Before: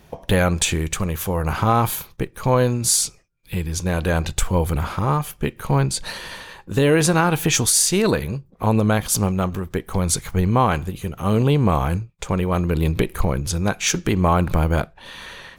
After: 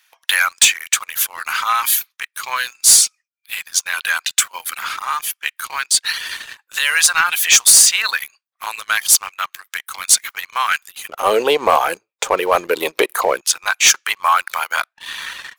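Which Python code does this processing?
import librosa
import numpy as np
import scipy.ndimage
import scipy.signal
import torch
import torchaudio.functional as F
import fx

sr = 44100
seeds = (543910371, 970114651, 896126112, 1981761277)

y = fx.dereverb_blind(x, sr, rt60_s=0.6)
y = fx.highpass(y, sr, hz=fx.steps((0.0, 1400.0), (11.09, 460.0), (13.41, 1100.0)), slope=24)
y = fx.leveller(y, sr, passes=2)
y = F.gain(torch.from_numpy(y), 4.5).numpy()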